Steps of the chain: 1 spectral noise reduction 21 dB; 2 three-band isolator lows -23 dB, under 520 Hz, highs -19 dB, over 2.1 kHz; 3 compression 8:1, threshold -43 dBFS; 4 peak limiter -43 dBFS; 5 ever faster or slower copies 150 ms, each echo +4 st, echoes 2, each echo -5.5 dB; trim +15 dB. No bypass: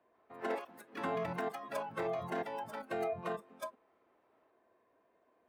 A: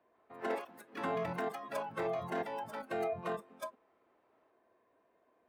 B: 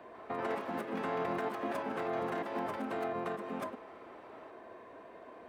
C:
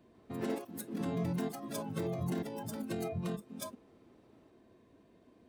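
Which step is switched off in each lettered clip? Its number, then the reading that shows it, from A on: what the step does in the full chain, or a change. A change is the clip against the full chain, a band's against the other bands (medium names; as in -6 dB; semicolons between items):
3, mean gain reduction 2.5 dB; 1, 250 Hz band +4.0 dB; 2, 1 kHz band -12.5 dB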